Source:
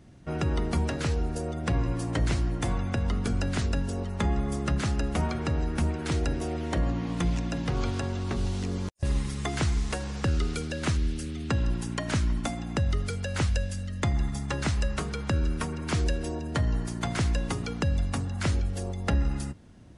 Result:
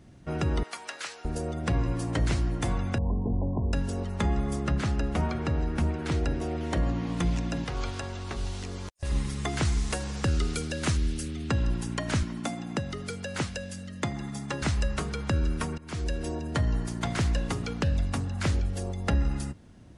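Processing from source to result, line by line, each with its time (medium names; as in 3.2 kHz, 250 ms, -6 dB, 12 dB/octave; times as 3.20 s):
0.63–1.25 s: high-pass 1.1 kHz
2.98–3.73 s: brick-wall FIR low-pass 1.1 kHz
4.60–6.61 s: treble shelf 5.8 kHz -8.5 dB
7.64–9.12 s: peaking EQ 180 Hz -9.5 dB 2.4 oct
9.65–11.28 s: treble shelf 6.4 kHz +7 dB
12.23–14.62 s: Chebyshev high-pass 170 Hz
15.78–16.28 s: fade in, from -17.5 dB
16.89–18.72 s: loudspeaker Doppler distortion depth 0.18 ms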